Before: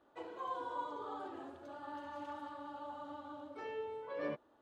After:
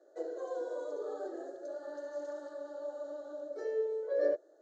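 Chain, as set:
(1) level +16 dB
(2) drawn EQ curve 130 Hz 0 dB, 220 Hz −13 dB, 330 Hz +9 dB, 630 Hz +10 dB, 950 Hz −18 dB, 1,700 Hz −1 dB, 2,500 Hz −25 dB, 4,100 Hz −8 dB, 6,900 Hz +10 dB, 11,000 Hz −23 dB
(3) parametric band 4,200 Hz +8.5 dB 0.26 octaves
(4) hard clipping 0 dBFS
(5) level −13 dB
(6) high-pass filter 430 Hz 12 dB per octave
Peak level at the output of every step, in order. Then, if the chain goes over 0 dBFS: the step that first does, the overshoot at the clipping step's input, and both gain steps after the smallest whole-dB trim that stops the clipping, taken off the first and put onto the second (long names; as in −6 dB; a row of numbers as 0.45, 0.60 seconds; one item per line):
−11.5, −3.5, −3.5, −3.5, −16.5, −19.5 dBFS
no step passes full scale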